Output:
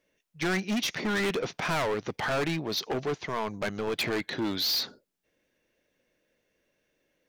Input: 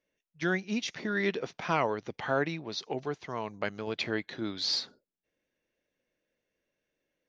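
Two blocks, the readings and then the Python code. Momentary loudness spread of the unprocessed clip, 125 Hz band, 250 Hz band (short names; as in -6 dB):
7 LU, +3.0 dB, +3.0 dB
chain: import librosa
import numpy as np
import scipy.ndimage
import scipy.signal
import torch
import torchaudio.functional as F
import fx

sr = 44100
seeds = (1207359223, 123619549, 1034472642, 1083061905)

y = np.clip(10.0 ** (34.0 / 20.0) * x, -1.0, 1.0) / 10.0 ** (34.0 / 20.0)
y = y * librosa.db_to_amplitude(8.5)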